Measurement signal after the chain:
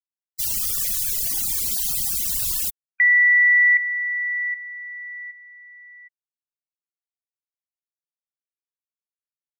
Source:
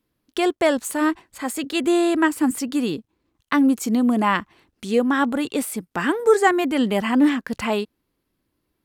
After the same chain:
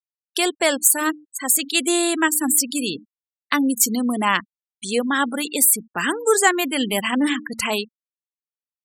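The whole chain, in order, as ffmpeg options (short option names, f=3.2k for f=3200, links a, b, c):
-af "bandreject=f=75.24:t=h:w=4,bandreject=f=150.48:t=h:w=4,bandreject=f=225.72:t=h:w=4,bandreject=f=300.96:t=h:w=4,crystalizer=i=7:c=0,afftfilt=real='re*gte(hypot(re,im),0.0794)':imag='im*gte(hypot(re,im),0.0794)':win_size=1024:overlap=0.75,volume=-3.5dB"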